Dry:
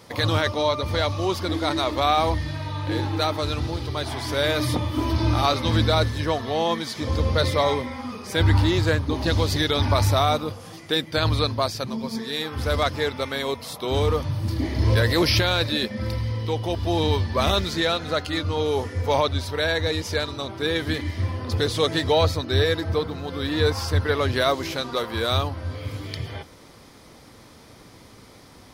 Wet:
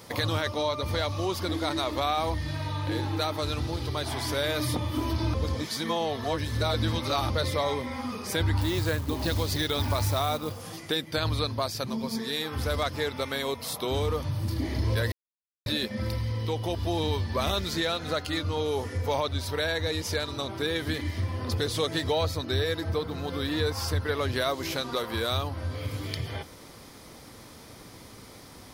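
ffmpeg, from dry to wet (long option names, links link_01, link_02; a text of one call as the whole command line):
ffmpeg -i in.wav -filter_complex "[0:a]asettb=1/sr,asplit=3[link_01][link_02][link_03];[link_01]atrim=end=8.614[link_04];[link_02]atrim=start=8.61:end=10.62,asetpts=PTS-STARTPTS,afade=type=in:duration=0.004:curve=qsin,afade=type=out:start_time=2.006:duration=0.004:curve=qsin,acrusher=bits=5:mode=log:mix=0:aa=0.000001[link_05];[link_03]atrim=start=10.616[link_06];[link_04][link_05]acrossfade=duration=0.004:curve1=hsin:curve2=qsin[link_07];[link_07][link_06]acrossfade=duration=0.004:curve1=qsin:curve2=hsin,asplit=5[link_08][link_09][link_10][link_11][link_12];[link_08]atrim=end=5.342[link_13];[link_09]atrim=start=5.338:end=7.302,asetpts=PTS-STARTPTS,areverse[link_14];[link_10]atrim=start=7.298:end=15.12,asetpts=PTS-STARTPTS,afade=type=out:start_time=7.818:duration=0.004:curve=hsin[link_15];[link_11]atrim=start=15.12:end=15.66,asetpts=PTS-STARTPTS,volume=0[link_16];[link_12]atrim=start=15.66,asetpts=PTS-STARTPTS,afade=type=in:duration=0.004:curve=hsin[link_17];[link_13][link_14]acrossfade=duration=0.004:curve1=hsin:curve2=hsin[link_18];[link_15][link_16][link_17]concat=n=3:v=0:a=1[link_19];[link_18][link_19]acrossfade=duration=0.004:curve1=hsin:curve2=hsin,highshelf=frequency=9600:gain=8.5,acompressor=threshold=-29dB:ratio=2" out.wav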